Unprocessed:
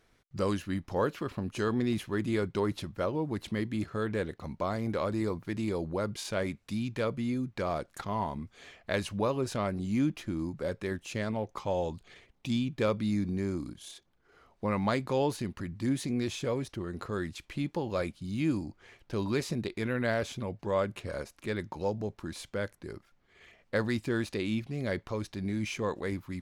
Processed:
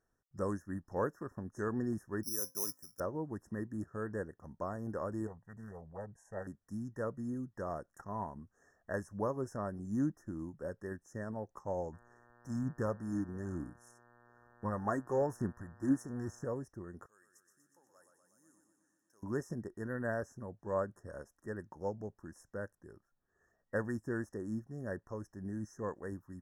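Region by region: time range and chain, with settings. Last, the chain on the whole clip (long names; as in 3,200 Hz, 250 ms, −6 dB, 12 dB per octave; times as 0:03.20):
0:02.23–0:03.00: high-pass filter 160 Hz 6 dB per octave + tuned comb filter 260 Hz, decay 0.28 s, mix 70% + bad sample-rate conversion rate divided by 8×, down filtered, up zero stuff
0:05.27–0:06.47: low-pass filter 7,900 Hz + phaser with its sweep stopped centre 1,300 Hz, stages 6 + highs frequency-modulated by the lows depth 0.51 ms
0:11.92–0:16.43: phase shifter 1.1 Hz, delay 3.5 ms, feedback 46% + hum with harmonics 120 Hz, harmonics 35, −48 dBFS −1 dB per octave
0:17.06–0:19.23: first difference + feedback echo with a swinging delay time 121 ms, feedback 70%, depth 56 cents, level −6 dB
whole clip: brick-wall band-stop 1,900–5,200 Hz; expander for the loud parts 1.5 to 1, over −44 dBFS; level −3 dB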